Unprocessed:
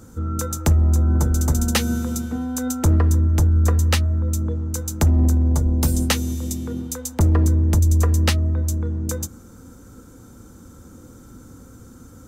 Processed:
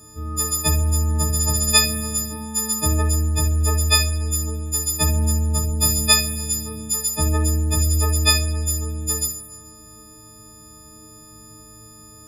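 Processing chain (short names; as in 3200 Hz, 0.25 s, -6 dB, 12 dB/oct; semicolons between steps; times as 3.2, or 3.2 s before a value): frequency quantiser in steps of 6 st; two-slope reverb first 0.38 s, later 1.6 s, DRR 1 dB; gain -5.5 dB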